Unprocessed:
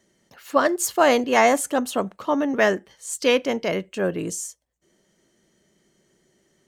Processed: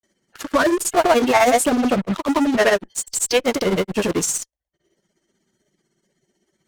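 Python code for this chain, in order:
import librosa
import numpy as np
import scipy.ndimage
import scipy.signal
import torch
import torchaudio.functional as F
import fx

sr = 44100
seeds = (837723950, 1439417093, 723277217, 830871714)

p1 = fx.spec_quant(x, sr, step_db=15)
p2 = fx.dereverb_blind(p1, sr, rt60_s=0.58)
p3 = fx.fuzz(p2, sr, gain_db=41.0, gate_db=-41.0)
p4 = p2 + (p3 * librosa.db_to_amplitude(-5.0))
y = fx.granulator(p4, sr, seeds[0], grain_ms=100.0, per_s=16.0, spray_ms=100.0, spread_st=0)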